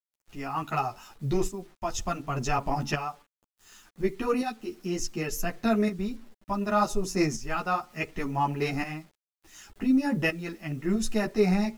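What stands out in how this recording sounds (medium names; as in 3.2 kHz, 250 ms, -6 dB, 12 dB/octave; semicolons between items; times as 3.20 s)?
tremolo saw up 0.68 Hz, depth 70%; a quantiser's noise floor 10-bit, dither none; a shimmering, thickened sound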